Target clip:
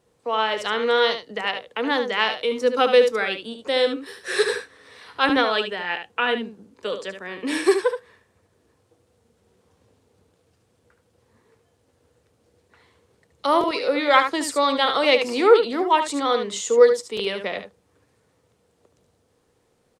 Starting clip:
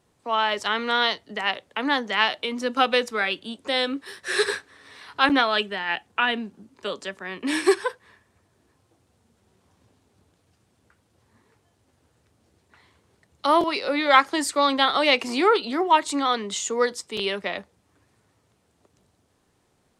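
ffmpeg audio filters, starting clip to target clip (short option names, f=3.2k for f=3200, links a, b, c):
-filter_complex "[0:a]equalizer=f=480:w=5.5:g=11.5,asplit=2[a][b];[b]aecho=0:1:73:0.376[c];[a][c]amix=inputs=2:normalize=0,volume=-1dB"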